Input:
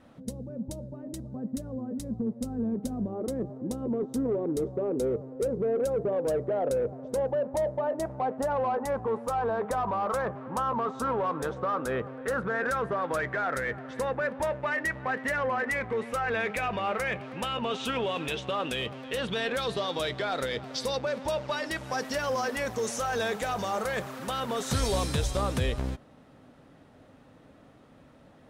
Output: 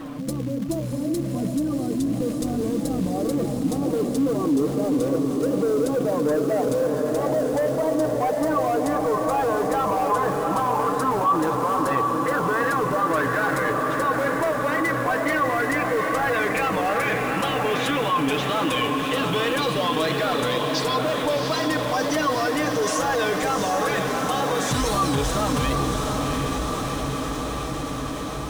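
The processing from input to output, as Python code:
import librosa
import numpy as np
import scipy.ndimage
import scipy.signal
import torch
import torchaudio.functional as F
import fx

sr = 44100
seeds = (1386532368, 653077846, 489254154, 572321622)

y = x + 0.89 * np.pad(x, (int(6.4 * sr / 1000.0), 0))[:len(x)]
y = fx.quant_float(y, sr, bits=2)
y = 10.0 ** (-19.5 / 20.0) * np.tanh(y / 10.0 ** (-19.5 / 20.0))
y = fx.small_body(y, sr, hz=(290.0, 1100.0), ring_ms=90, db=12)
y = fx.wow_flutter(y, sr, seeds[0], rate_hz=2.1, depth_cents=120.0)
y = fx.echo_diffused(y, sr, ms=735, feedback_pct=63, wet_db=-5)
y = fx.env_flatten(y, sr, amount_pct=50)
y = F.gain(torch.from_numpy(y), -2.5).numpy()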